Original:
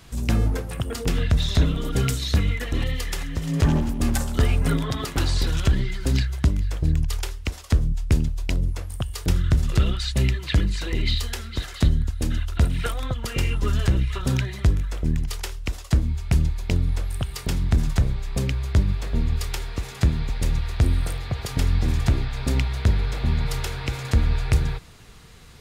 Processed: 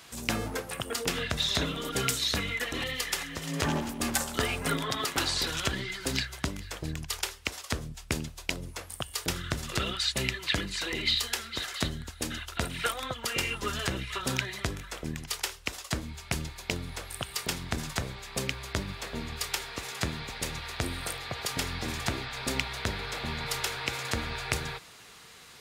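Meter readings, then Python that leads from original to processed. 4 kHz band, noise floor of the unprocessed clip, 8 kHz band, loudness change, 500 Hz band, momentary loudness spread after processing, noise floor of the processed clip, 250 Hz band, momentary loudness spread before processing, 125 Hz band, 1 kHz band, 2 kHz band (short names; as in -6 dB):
+2.0 dB, -39 dBFS, +2.0 dB, -7.5 dB, -3.5 dB, 8 LU, -49 dBFS, -8.5 dB, 7 LU, -15.5 dB, 0.0 dB, +1.5 dB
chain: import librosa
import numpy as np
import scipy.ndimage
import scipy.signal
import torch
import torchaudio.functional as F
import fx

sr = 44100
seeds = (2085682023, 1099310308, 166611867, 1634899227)

y = fx.highpass(x, sr, hz=720.0, slope=6)
y = y * 10.0 ** (2.0 / 20.0)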